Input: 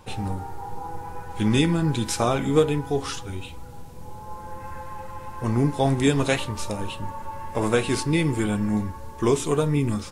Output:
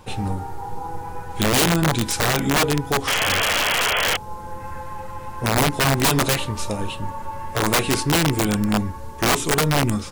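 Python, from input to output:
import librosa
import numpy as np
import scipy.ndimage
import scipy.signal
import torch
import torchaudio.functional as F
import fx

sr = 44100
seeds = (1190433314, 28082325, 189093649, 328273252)

y = fx.spec_paint(x, sr, seeds[0], shape='noise', start_s=3.07, length_s=1.1, low_hz=410.0, high_hz=3400.0, level_db=-24.0)
y = (np.mod(10.0 ** (15.5 / 20.0) * y + 1.0, 2.0) - 1.0) / 10.0 ** (15.5 / 20.0)
y = y * 10.0 ** (3.5 / 20.0)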